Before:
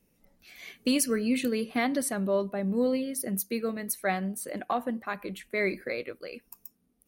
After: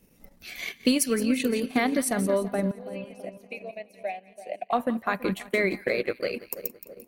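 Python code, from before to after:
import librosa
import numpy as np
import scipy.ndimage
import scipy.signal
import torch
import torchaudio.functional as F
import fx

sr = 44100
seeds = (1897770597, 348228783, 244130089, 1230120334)

p1 = fx.over_compress(x, sr, threshold_db=-36.0, ratio=-1.0)
p2 = x + (p1 * 10.0 ** (-1.0 / 20.0))
p3 = fx.double_bandpass(p2, sr, hz=1300.0, octaves=1.9, at=(2.71, 4.73))
p4 = fx.echo_split(p3, sr, split_hz=940.0, low_ms=330, high_ms=172, feedback_pct=52, wet_db=-11.0)
y = fx.transient(p4, sr, attack_db=5, sustain_db=-9)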